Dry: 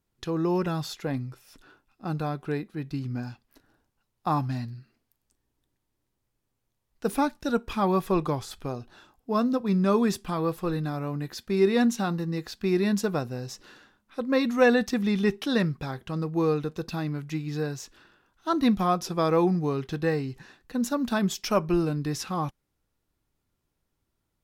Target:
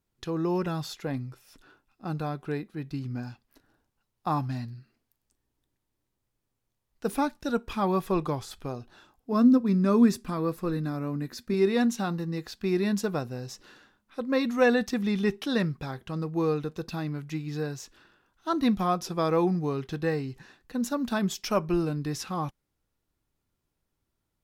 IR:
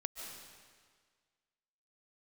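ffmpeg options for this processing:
-filter_complex "[0:a]asettb=1/sr,asplit=3[s0][s1][s2];[s0]atrim=end=9.324[s3];[s1]atrim=start=9.32:end=11.54,asetpts=PTS-STARTPTS,afade=t=in:d=0.004:c=qsin,afade=t=out:st=2.216:d=0.004:c=qsin,equalizer=f=250:t=o:w=0.33:g=11,equalizer=f=800:t=o:w=0.33:g=-6,equalizer=f=3150:t=o:w=0.33:g=-8[s4];[s2]atrim=start=11.536[s5];[s3][s4]acrossfade=d=0.004:c1=hsin:c2=qsin[s6];[s6][s5]acrossfade=d=0.004:c1=qsin:c2=hsin,volume=0.794"

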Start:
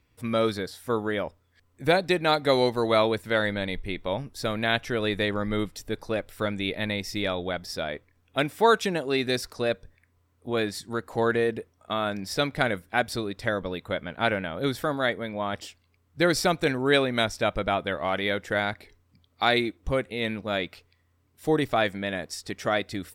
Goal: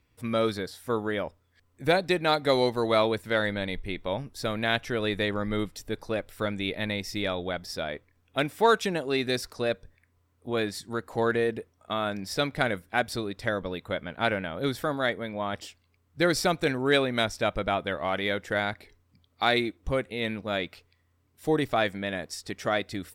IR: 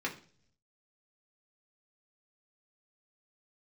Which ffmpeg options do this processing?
-af "aeval=exprs='0.447*(cos(1*acos(clip(val(0)/0.447,-1,1)))-cos(1*PI/2))+0.0112*(cos(6*acos(clip(val(0)/0.447,-1,1)))-cos(6*PI/2))+0.00891*(cos(8*acos(clip(val(0)/0.447,-1,1)))-cos(8*PI/2))':c=same,volume=0.841"

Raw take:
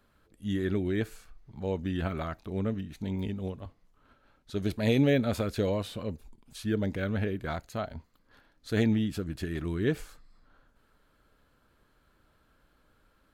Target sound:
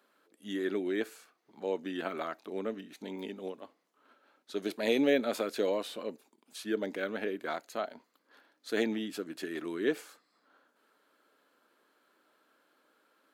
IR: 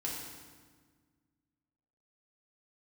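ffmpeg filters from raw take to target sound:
-af "highpass=f=280:w=0.5412,highpass=f=280:w=1.3066"

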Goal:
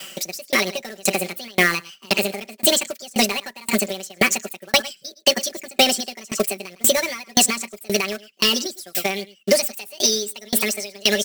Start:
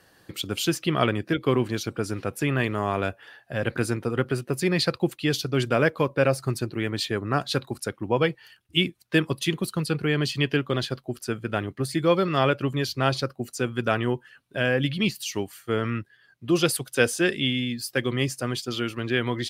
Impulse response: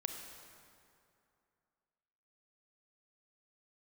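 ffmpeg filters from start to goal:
-af "highpass=f=400:p=1,aecho=1:1:181:0.119,asetrate=76440,aresample=44100,acrusher=bits=3:mode=log:mix=0:aa=0.000001,equalizer=f=920:t=o:w=0.79:g=-13.5,aecho=1:1:5.2:0.95,acompressor=threshold=0.0251:ratio=6,alimiter=level_in=16.8:limit=0.891:release=50:level=0:latency=1,aeval=exprs='val(0)*pow(10,-31*if(lt(mod(1.9*n/s,1),2*abs(1.9)/1000),1-mod(1.9*n/s,1)/(2*abs(1.9)/1000),(mod(1.9*n/s,1)-2*abs(1.9)/1000)/(1-2*abs(1.9)/1000))/20)':c=same"

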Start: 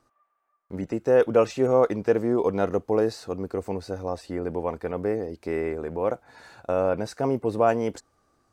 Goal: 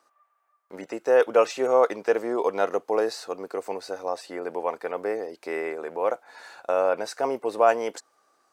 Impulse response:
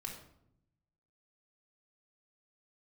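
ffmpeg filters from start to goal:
-af "highpass=550,volume=1.58"

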